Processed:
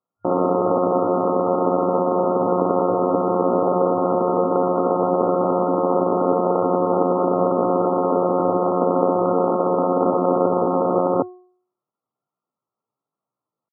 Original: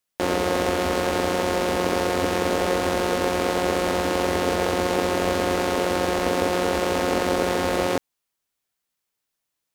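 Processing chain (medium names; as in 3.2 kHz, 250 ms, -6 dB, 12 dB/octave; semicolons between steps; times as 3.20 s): tempo 0.71×; FFT band-pass 100–1400 Hz; de-hum 363.5 Hz, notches 27; trim +5 dB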